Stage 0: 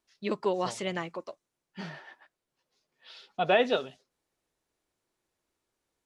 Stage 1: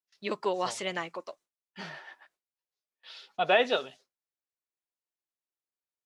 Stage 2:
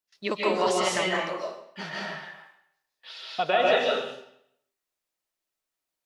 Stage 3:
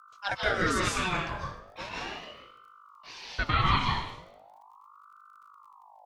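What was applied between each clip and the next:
gate with hold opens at -53 dBFS; bass shelf 340 Hz -11.5 dB; trim +2.5 dB
compression, threshold -27 dBFS, peak gain reduction 9.5 dB; algorithmic reverb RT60 0.72 s, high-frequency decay 0.9×, pre-delay 105 ms, DRR -3.5 dB; trim +4.5 dB
hum 50 Hz, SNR 22 dB; crackle 45 per s -52 dBFS; ring modulator with a swept carrier 880 Hz, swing 45%, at 0.38 Hz

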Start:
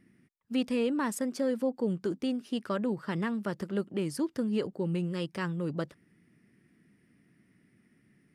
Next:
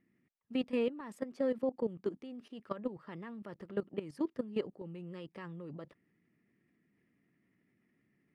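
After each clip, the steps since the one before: tone controls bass -5 dB, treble -14 dB; band-stop 1.5 kHz, Q 8.4; level held to a coarse grid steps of 15 dB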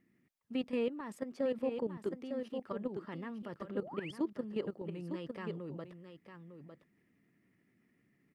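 delay 904 ms -9.5 dB; painted sound rise, 3.74–4.12 s, 260–3500 Hz -50 dBFS; peak limiter -28 dBFS, peak gain reduction 6.5 dB; trim +2 dB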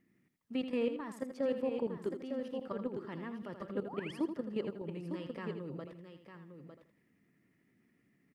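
feedback delay 81 ms, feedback 25%, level -9 dB

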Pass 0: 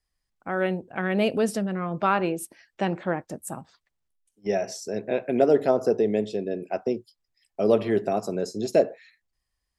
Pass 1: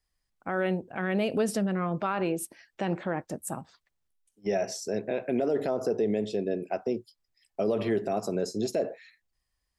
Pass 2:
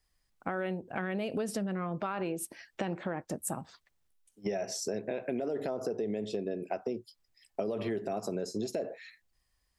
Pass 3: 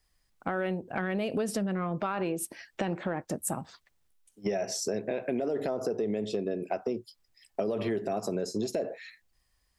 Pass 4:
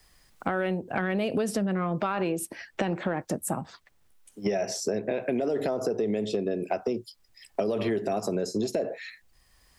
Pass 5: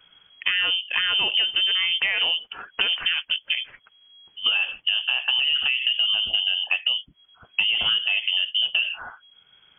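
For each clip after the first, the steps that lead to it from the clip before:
peak limiter -18.5 dBFS, peak gain reduction 11 dB
compression 6:1, threshold -35 dBFS, peak gain reduction 12 dB; trim +4 dB
saturation -18 dBFS, distortion -30 dB; trim +3.5 dB
three bands compressed up and down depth 40%; trim +3 dB
frequency inversion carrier 3.3 kHz; trim +5 dB

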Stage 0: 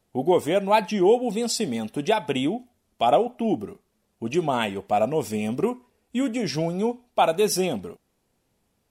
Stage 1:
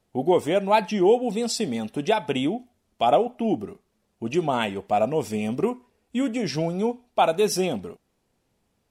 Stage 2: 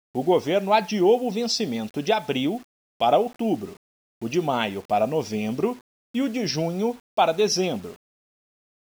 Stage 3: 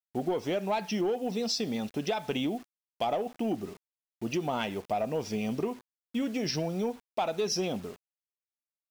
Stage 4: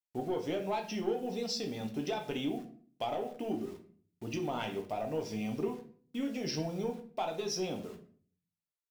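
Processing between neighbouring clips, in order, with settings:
treble shelf 11 kHz -8 dB
resonant high shelf 6.9 kHz -8 dB, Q 3; word length cut 8-bit, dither none
in parallel at -12 dB: wavefolder -19 dBFS; on the sum: compression, threshold -21 dBFS, peak gain reduction 7.5 dB; trim -5.5 dB
simulated room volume 44 m³, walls mixed, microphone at 0.44 m; trim -6.5 dB

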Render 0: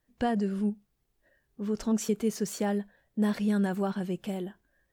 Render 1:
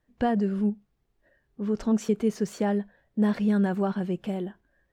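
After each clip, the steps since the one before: low-pass 2.4 kHz 6 dB/octave; trim +3.5 dB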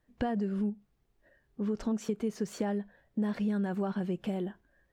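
compression 4:1, threshold -29 dBFS, peak gain reduction 9.5 dB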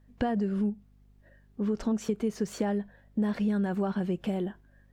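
hum 50 Hz, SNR 29 dB; trim +3 dB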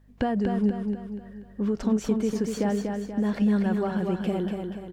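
feedback delay 241 ms, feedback 46%, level -5 dB; trim +2.5 dB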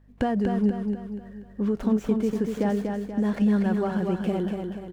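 median filter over 9 samples; trim +1 dB

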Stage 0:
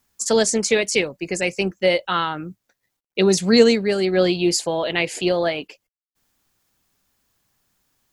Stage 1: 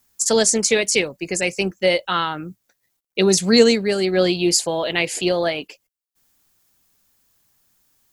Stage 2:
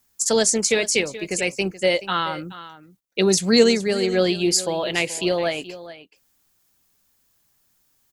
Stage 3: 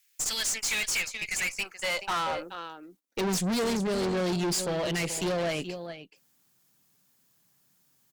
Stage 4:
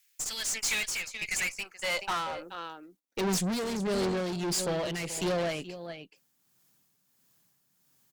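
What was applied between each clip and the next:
treble shelf 5.7 kHz +8 dB
delay 427 ms -15.5 dB; trim -2 dB
high-pass sweep 2.3 kHz -> 150 Hz, 1.20–3.58 s; valve stage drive 26 dB, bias 0.5
tremolo 1.5 Hz, depth 47%

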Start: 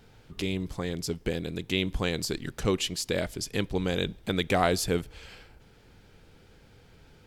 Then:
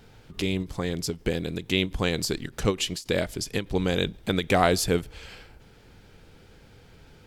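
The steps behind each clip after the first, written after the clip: endings held to a fixed fall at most 260 dB/s; trim +3.5 dB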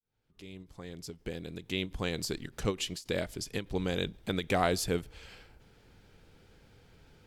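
fade-in on the opening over 2.30 s; trim -7 dB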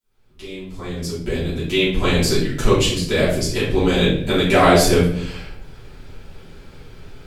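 simulated room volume 110 m³, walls mixed, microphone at 2.9 m; trim +5 dB

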